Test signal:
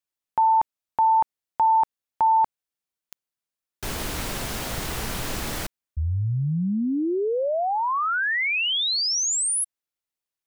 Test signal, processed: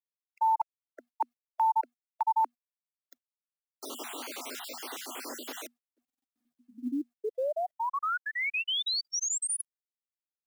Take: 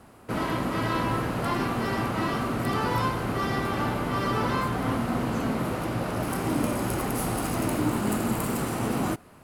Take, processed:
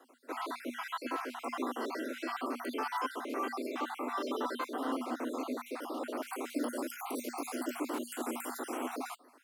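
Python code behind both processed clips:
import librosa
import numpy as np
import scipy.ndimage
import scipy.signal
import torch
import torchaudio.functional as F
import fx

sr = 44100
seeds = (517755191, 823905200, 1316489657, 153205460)

y = fx.spec_dropout(x, sr, seeds[0], share_pct=49)
y = scipy.signal.sosfilt(scipy.signal.cheby1(10, 1.0, 240.0, 'highpass', fs=sr, output='sos'), y)
y = fx.dynamic_eq(y, sr, hz=1800.0, q=5.9, threshold_db=-51.0, ratio=4.0, max_db=-5)
y = fx.quant_companded(y, sr, bits=8)
y = y * librosa.db_to_amplitude(-5.0)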